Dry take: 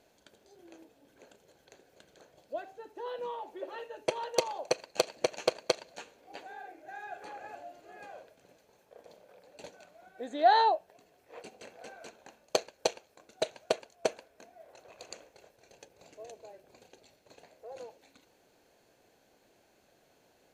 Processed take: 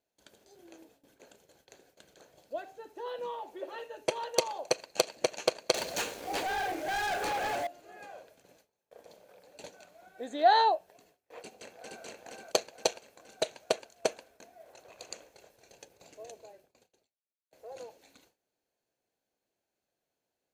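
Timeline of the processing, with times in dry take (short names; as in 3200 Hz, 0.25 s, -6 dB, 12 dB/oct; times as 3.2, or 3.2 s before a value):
5.74–7.67 sample leveller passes 5
11.42–12.04 echo throw 0.47 s, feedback 55%, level -0.5 dB
16.36–17.51 fade out quadratic
whole clip: gate with hold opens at -52 dBFS; high shelf 5100 Hz +6 dB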